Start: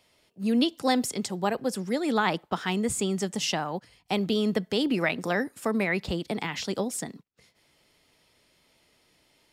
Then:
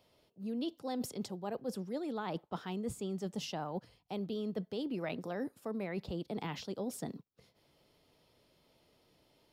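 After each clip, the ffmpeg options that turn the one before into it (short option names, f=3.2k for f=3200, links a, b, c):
-af "equalizer=f=125:t=o:w=1:g=3,equalizer=f=500:t=o:w=1:g=3,equalizer=f=2k:t=o:w=1:g=-8,equalizer=f=8k:t=o:w=1:g=-10,areverse,acompressor=threshold=-33dB:ratio=6,areverse,volume=-2.5dB"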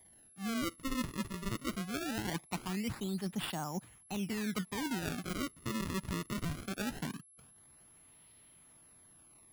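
-af "acrusher=samples=32:mix=1:aa=0.000001:lfo=1:lforange=51.2:lforate=0.21,equalizer=f=500:t=o:w=0.97:g=-11,aeval=exprs='val(0)+0.000708*sin(2*PI*11000*n/s)':c=same,volume=4dB"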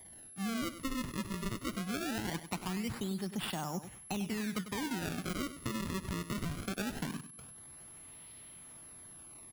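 -af "acompressor=threshold=-42dB:ratio=5,aecho=1:1:98|196|294:0.251|0.0603|0.0145,volume=7.5dB"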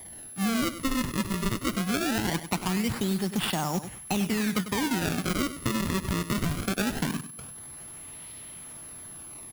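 -af "acrusher=bits=3:mode=log:mix=0:aa=0.000001,volume=9dB"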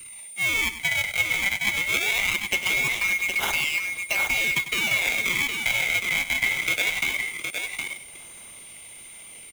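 -filter_complex "[0:a]afftfilt=real='real(if(lt(b,920),b+92*(1-2*mod(floor(b/92),2)),b),0)':imag='imag(if(lt(b,920),b+92*(1-2*mod(floor(b/92),2)),b),0)':win_size=2048:overlap=0.75,acrossover=split=230|1100|2200[a][b][c][d];[c]aeval=exprs='sgn(val(0))*max(abs(val(0))-0.00106,0)':c=same[e];[a][b][e][d]amix=inputs=4:normalize=0,aecho=1:1:764:0.531,volume=2.5dB"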